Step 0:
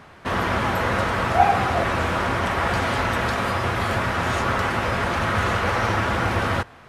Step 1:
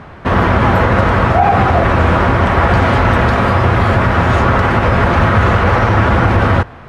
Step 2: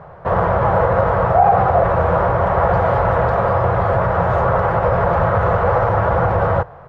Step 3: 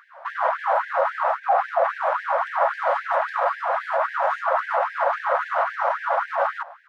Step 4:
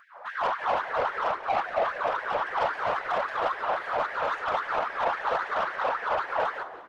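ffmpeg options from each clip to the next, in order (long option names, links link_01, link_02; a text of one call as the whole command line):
ffmpeg -i in.wav -af "lowpass=frequency=1700:poles=1,lowshelf=frequency=140:gain=6.5,alimiter=level_in=12.5dB:limit=-1dB:release=50:level=0:latency=1,volume=-1dB" out.wav
ffmpeg -i in.wav -af "firequalizer=gain_entry='entry(100,0);entry(160,6);entry(240,-13);entry(500,10);entry(2400,-9);entry(8100,-12)':delay=0.05:min_phase=1,volume=-8dB" out.wav
ffmpeg -i in.wav -af "alimiter=limit=-9.5dB:level=0:latency=1:release=16,afftfilt=real='re*gte(b*sr/1024,490*pow(1600/490,0.5+0.5*sin(2*PI*3.7*pts/sr)))':imag='im*gte(b*sr/1024,490*pow(1600/490,0.5+0.5*sin(2*PI*3.7*pts/sr)))':win_size=1024:overlap=0.75" out.wav
ffmpeg -i in.wav -filter_complex "[0:a]asoftclip=type=tanh:threshold=-19dB,afftfilt=real='hypot(re,im)*cos(2*PI*random(0))':imag='hypot(re,im)*sin(2*PI*random(1))':win_size=512:overlap=0.75,asplit=6[link_01][link_02][link_03][link_04][link_05][link_06];[link_02]adelay=177,afreqshift=-72,volume=-14dB[link_07];[link_03]adelay=354,afreqshift=-144,volume=-20.4dB[link_08];[link_04]adelay=531,afreqshift=-216,volume=-26.8dB[link_09];[link_05]adelay=708,afreqshift=-288,volume=-33.1dB[link_10];[link_06]adelay=885,afreqshift=-360,volume=-39.5dB[link_11];[link_01][link_07][link_08][link_09][link_10][link_11]amix=inputs=6:normalize=0,volume=3.5dB" out.wav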